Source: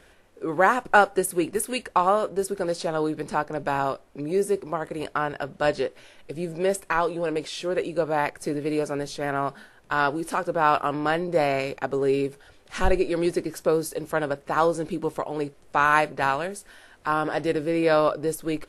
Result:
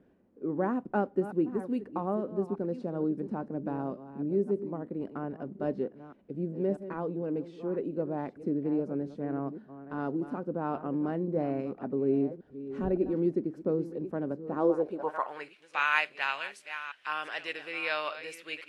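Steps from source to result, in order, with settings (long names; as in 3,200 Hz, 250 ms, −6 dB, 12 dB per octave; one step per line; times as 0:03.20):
delay that plays each chunk backwards 564 ms, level −12.5 dB
band-pass filter sweep 230 Hz → 2,600 Hz, 0:14.50–0:15.55
level +3.5 dB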